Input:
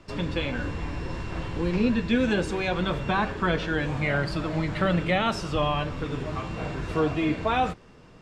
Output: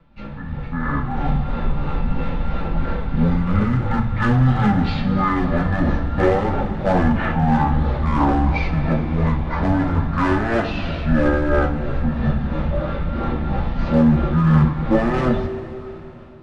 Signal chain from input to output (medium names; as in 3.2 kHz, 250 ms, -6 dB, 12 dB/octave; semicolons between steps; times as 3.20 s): level rider gain up to 12 dB; hard clipper -10.5 dBFS, distortion -14 dB; rotary cabinet horn 6 Hz; speed mistake 15 ips tape played at 7.5 ips; two-slope reverb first 0.24 s, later 3.5 s, from -18 dB, DRR 1.5 dB; trim -1 dB